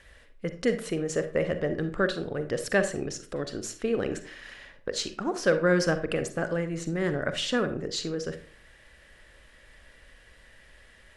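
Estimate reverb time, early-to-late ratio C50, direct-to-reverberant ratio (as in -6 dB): 0.45 s, 11.0 dB, 9.0 dB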